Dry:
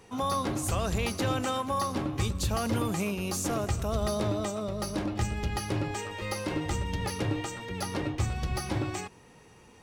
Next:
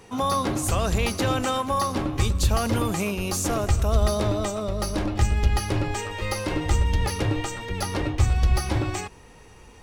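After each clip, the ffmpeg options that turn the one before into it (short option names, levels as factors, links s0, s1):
-af "asubboost=boost=5:cutoff=64,volume=1.88"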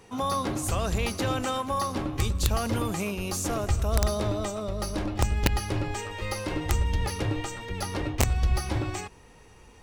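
-af "aeval=exprs='(mod(3.16*val(0)+1,2)-1)/3.16':c=same,volume=0.631"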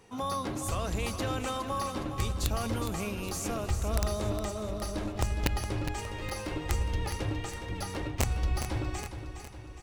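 -af "aecho=1:1:413|826|1239|1652|2065|2478:0.335|0.181|0.0977|0.0527|0.0285|0.0154,volume=0.562"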